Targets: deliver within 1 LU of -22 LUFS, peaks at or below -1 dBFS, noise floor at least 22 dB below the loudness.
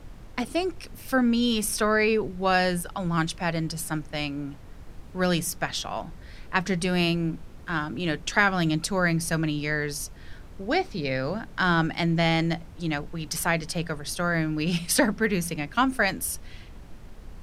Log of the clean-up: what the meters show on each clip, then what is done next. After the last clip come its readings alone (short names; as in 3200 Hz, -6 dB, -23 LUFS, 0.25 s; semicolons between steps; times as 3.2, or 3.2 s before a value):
noise floor -44 dBFS; noise floor target -48 dBFS; loudness -26.0 LUFS; peak -6.5 dBFS; loudness target -22.0 LUFS
-> noise print and reduce 6 dB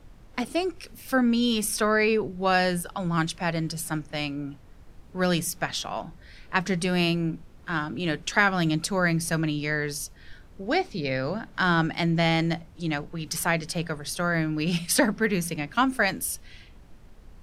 noise floor -50 dBFS; loudness -26.0 LUFS; peak -6.5 dBFS; loudness target -22.0 LUFS
-> gain +4 dB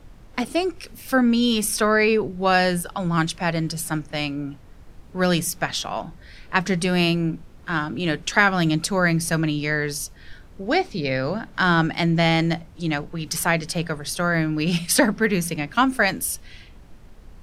loudness -22.0 LUFS; peak -2.5 dBFS; noise floor -46 dBFS